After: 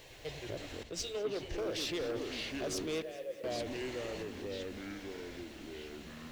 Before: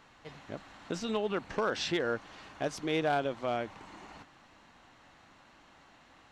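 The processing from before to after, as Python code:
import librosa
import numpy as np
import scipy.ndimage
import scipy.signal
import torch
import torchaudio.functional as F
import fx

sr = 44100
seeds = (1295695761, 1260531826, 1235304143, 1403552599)

p1 = fx.peak_eq(x, sr, hz=840.0, db=-9.5, octaves=0.58)
p2 = fx.over_compress(p1, sr, threshold_db=-45.0, ratio=-1.0)
p3 = p1 + (p2 * 10.0 ** (-0.5 / 20.0))
p4 = fx.fixed_phaser(p3, sr, hz=540.0, stages=4)
p5 = fx.echo_pitch(p4, sr, ms=106, semitones=-4, count=3, db_per_echo=-6.0)
p6 = 10.0 ** (-31.5 / 20.0) * np.tanh(p5 / 10.0 ** (-31.5 / 20.0))
p7 = fx.vowel_filter(p6, sr, vowel='e', at=(3.02, 3.44))
p8 = fx.dmg_noise_colour(p7, sr, seeds[0], colour='white', level_db=-68.0)
p9 = p8 + fx.echo_alternate(p8, sr, ms=102, hz=800.0, feedback_pct=69, wet_db=-12.0, dry=0)
y = fx.band_widen(p9, sr, depth_pct=100, at=(0.83, 1.58))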